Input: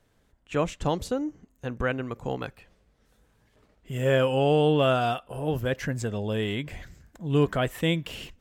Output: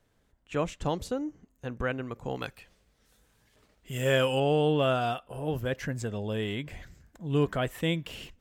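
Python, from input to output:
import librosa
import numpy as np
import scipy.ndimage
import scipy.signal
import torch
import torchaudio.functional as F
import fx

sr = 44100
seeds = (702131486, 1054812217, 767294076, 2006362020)

y = fx.high_shelf(x, sr, hz=2100.0, db=9.5, at=(2.35, 4.4))
y = F.gain(torch.from_numpy(y), -3.5).numpy()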